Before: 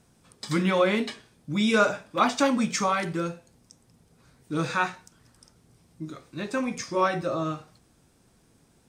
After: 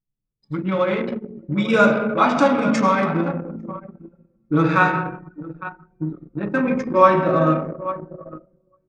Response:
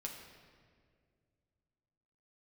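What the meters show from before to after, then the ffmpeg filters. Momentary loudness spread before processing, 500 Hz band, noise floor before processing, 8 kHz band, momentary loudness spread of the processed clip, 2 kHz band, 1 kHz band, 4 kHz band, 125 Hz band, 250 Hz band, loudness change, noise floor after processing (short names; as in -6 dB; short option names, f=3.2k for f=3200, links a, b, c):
17 LU, +8.0 dB, -63 dBFS, -7.0 dB, 18 LU, +6.0 dB, +8.5 dB, -1.5 dB, +9.0 dB, +7.5 dB, +6.5 dB, -71 dBFS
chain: -filter_complex "[0:a]bandreject=f=60:t=h:w=6,bandreject=f=120:t=h:w=6,bandreject=f=180:t=h:w=6,bandreject=f=240:t=h:w=6,agate=range=-7dB:threshold=-53dB:ratio=16:detection=peak,acrossover=split=2600[a][b];[a]dynaudnorm=f=120:g=17:m=11.5dB[c];[c][b]amix=inputs=2:normalize=0,aecho=1:1:851|1702:0.224|0.0336[d];[1:a]atrim=start_sample=2205[e];[d][e]afir=irnorm=-1:irlink=0,anlmdn=398,volume=1.5dB"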